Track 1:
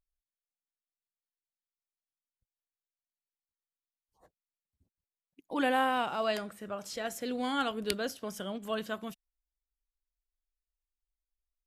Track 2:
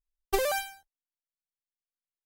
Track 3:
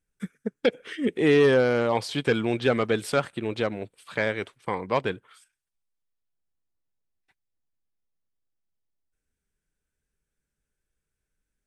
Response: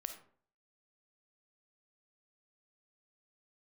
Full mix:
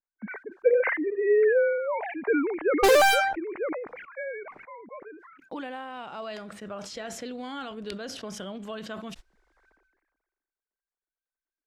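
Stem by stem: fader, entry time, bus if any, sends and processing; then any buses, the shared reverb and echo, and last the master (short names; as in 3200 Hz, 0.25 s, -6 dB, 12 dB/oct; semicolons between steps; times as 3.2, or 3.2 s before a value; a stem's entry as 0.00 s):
+2.5 dB, 0.00 s, no send, gate -51 dBFS, range -24 dB; LPF 5700 Hz 12 dB/oct; compressor 16:1, threshold -36 dBFS, peak gain reduction 14 dB
+2.5 dB, 2.50 s, no send, low-pass opened by the level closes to 340 Hz, open at -27 dBFS; overdrive pedal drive 25 dB, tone 4700 Hz, clips at -13 dBFS
-3.0 dB, 0.00 s, no send, sine-wave speech; elliptic low-pass 2200 Hz, stop band 40 dB; auto duck -18 dB, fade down 1.50 s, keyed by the first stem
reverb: off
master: sustainer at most 43 dB/s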